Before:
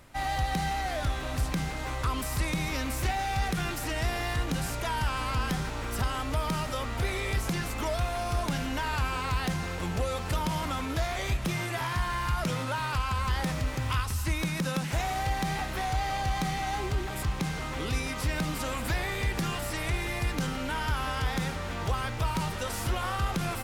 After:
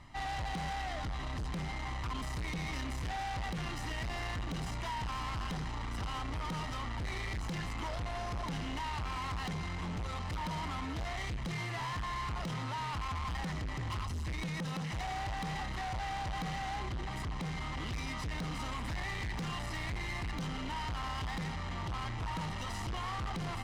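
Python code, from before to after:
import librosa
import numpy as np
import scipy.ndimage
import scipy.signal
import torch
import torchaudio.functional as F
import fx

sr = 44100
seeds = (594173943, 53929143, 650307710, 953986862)

y = scipy.signal.sosfilt(scipy.signal.butter(2, 5500.0, 'lowpass', fs=sr, output='sos'), x)
y = y + 0.7 * np.pad(y, (int(1.0 * sr / 1000.0), 0))[:len(y)]
y = 10.0 ** (-32.5 / 20.0) * np.tanh(y / 10.0 ** (-32.5 / 20.0))
y = y * librosa.db_to_amplitude(-2.5)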